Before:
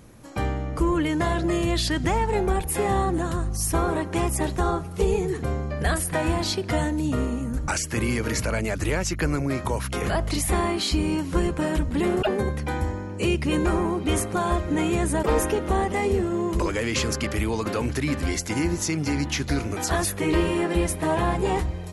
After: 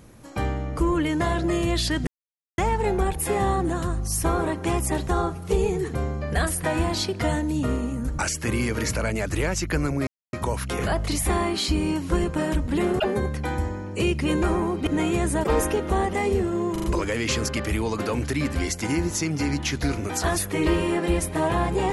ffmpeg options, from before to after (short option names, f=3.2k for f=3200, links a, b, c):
-filter_complex "[0:a]asplit=7[a][b][c][d][e][f][g];[a]atrim=end=2.07,asetpts=PTS-STARTPTS,afade=t=out:st=2.066:d=0.004:c=hsin,apad=pad_dur=0.51[h];[b]atrim=start=2.07:end=9.56,asetpts=PTS-STARTPTS,afade=t=in:d=0.004:c=hsin,afade=t=out:st=7.486:d=0.004:c=hsin,apad=pad_dur=0.26[i];[c]atrim=start=9.56:end=14.102,asetpts=PTS-STARTPTS,afade=t=in:d=0.004:c=hsin[j];[d]atrim=start=14.658:end=16.552[k];[e]atrim=start=16.508:end=16.552[l];[f]atrim=start=16.508:end=16.552[m];[g]atrim=start=16.508[n];[h][i][j]concat=n=3:v=0:a=1[o];[o][k]acrossfade=d=0.004:c1=hsin:c2=hsin[p];[p][l]acrossfade=d=0.004:c1=hsin:c2=hsin[q];[q][m]acrossfade=d=0.004:c1=hsin:c2=hsin[r];[r][n]acrossfade=d=0.004:c1=hsin:c2=hsin"